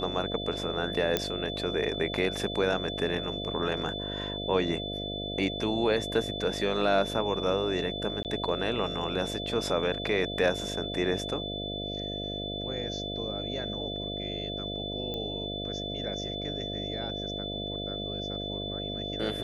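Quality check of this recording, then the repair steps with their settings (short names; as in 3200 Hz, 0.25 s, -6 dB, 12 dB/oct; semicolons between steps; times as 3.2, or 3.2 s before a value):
buzz 50 Hz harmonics 14 -37 dBFS
tone 3500 Hz -36 dBFS
1.17 pop -10 dBFS
8.23–8.25 gap 18 ms
15.14 pop -22 dBFS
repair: de-click; de-hum 50 Hz, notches 14; notch 3500 Hz, Q 30; interpolate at 8.23, 18 ms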